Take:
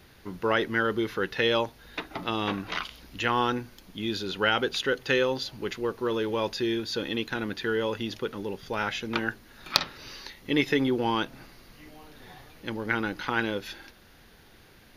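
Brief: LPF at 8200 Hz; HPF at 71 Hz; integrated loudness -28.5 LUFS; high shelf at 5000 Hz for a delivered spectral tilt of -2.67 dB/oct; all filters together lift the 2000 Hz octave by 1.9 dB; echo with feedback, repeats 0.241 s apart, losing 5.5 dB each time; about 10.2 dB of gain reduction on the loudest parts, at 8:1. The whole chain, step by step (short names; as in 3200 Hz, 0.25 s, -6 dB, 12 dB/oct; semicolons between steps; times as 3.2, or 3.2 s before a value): HPF 71 Hz; LPF 8200 Hz; bell 2000 Hz +3.5 dB; high shelf 5000 Hz -6.5 dB; compressor 8:1, threshold -30 dBFS; feedback echo 0.241 s, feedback 53%, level -5.5 dB; gain +6 dB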